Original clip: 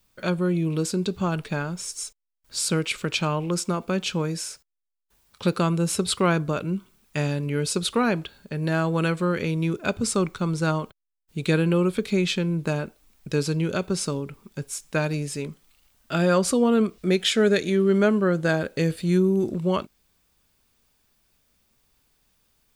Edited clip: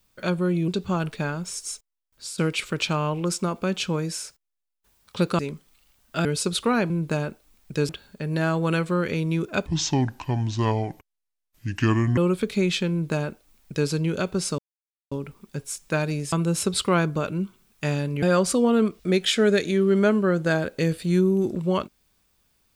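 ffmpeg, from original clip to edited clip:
ffmpeg -i in.wav -filter_complex "[0:a]asplit=15[link_01][link_02][link_03][link_04][link_05][link_06][link_07][link_08][link_09][link_10][link_11][link_12][link_13][link_14][link_15];[link_01]atrim=end=0.682[link_16];[link_02]atrim=start=0.998:end=2.7,asetpts=PTS-STARTPTS,afade=type=out:start_time=1.002:duration=0.7:curve=qsin:silence=0.211349[link_17];[link_03]atrim=start=2.7:end=3.332,asetpts=PTS-STARTPTS,afade=type=in:duration=0.004:curve=hsin:silence=0.211349[link_18];[link_04]atrim=start=3.308:end=3.332[link_19];[link_05]atrim=start=3.308:end=3.332[link_20];[link_06]atrim=start=3.308:end=5.652[link_21];[link_07]atrim=start=15.348:end=16.212[link_22];[link_08]atrim=start=7.548:end=8.202[link_23];[link_09]atrim=start=12.458:end=13.452[link_24];[link_10]atrim=start=8.198:end=9.974[link_25];[link_11]atrim=start=9.97:end=11.73,asetpts=PTS-STARTPTS,asetrate=30870,aresample=44100[link_26];[link_12]atrim=start=11.726:end=14.14,asetpts=PTS-STARTPTS,afade=type=out:start_time=2.41:duration=0.004:curve=hsin,apad=pad_dur=0.53[link_27];[link_13]atrim=start=14.14:end=15.352,asetpts=PTS-STARTPTS,afade=type=in:duration=0.004:curve=hsin[link_28];[link_14]atrim=start=5.648:end=7.552[link_29];[link_15]atrim=start=16.208[link_30];[link_17][link_18]concat=n=2:v=0:a=1[link_31];[link_16][link_31]acrossfade=duration=0.004:curve1=hsin:curve2=hsin[link_32];[link_32][link_19]acrossfade=duration=0.004:curve1=hsin:curve2=hsin[link_33];[link_33][link_20]acrossfade=duration=0.004:curve1=hsin:curve2=hsin[link_34];[link_34][link_21]acrossfade=duration=0.004:curve1=hsin:curve2=hsin[link_35];[link_35][link_22]acrossfade=duration=0.004:curve1=hsin:curve2=hsin[link_36];[link_36][link_23]acrossfade=duration=0.004:curve1=hsin:curve2=hsin[link_37];[link_37][link_24]acrossfade=duration=0.004:curve1=hsin:curve2=hsin[link_38];[link_38][link_25]acrossfade=duration=0.004:curve1=hsin:curve2=hsin[link_39];[link_39][link_26]acrossfade=duration=0.004:curve1=hsin:curve2=hsin[link_40];[link_27][link_28]concat=n=2:v=0:a=1[link_41];[link_40][link_41]acrossfade=duration=0.004:curve1=hsin:curve2=hsin[link_42];[link_42][link_29]acrossfade=duration=0.004:curve1=hsin:curve2=hsin[link_43];[link_43][link_30]acrossfade=duration=0.004:curve1=hsin:curve2=hsin" out.wav

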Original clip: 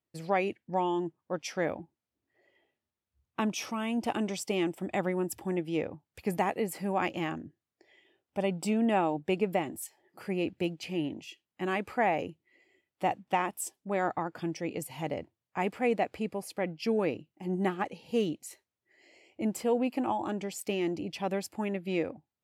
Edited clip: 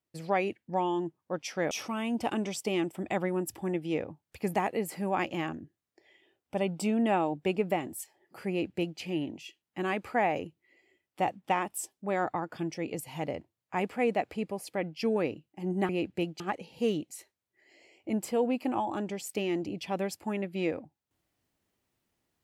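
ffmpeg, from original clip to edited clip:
ffmpeg -i in.wav -filter_complex "[0:a]asplit=4[link_01][link_02][link_03][link_04];[link_01]atrim=end=1.712[link_05];[link_02]atrim=start=3.538:end=17.722[link_06];[link_03]atrim=start=10.318:end=10.832[link_07];[link_04]atrim=start=17.718[link_08];[link_05][link_06]acrossfade=duration=0.004:curve1=hsin:curve2=hsin[link_09];[link_09][link_07]acrossfade=duration=0.004:curve1=hsin:curve2=hsin[link_10];[link_10][link_08]acrossfade=duration=0.004:curve1=hsin:curve2=hsin" out.wav

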